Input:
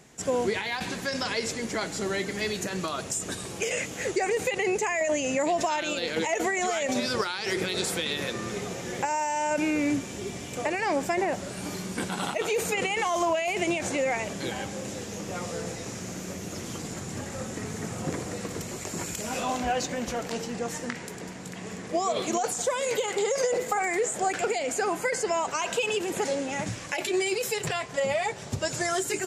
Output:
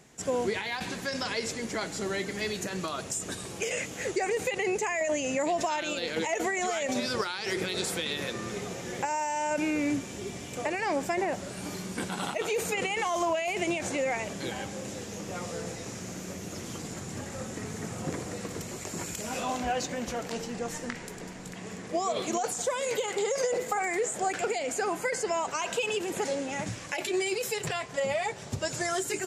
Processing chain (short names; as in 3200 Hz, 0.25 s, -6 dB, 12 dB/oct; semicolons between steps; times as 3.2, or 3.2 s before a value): 20.36–21.53 added noise brown -53 dBFS; gain -2.5 dB